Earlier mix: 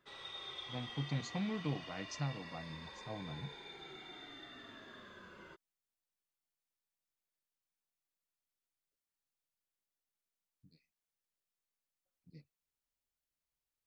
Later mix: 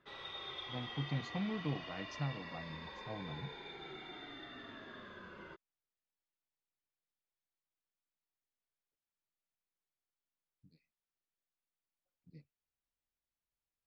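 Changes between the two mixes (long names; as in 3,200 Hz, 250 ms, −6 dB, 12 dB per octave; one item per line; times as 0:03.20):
background +4.0 dB
master: add high-frequency loss of the air 150 metres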